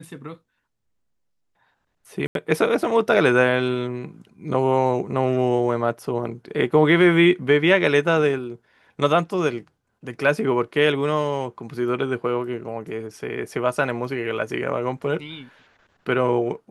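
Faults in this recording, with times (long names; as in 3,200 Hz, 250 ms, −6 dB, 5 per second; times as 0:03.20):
0:02.27–0:02.35: drop-out 82 ms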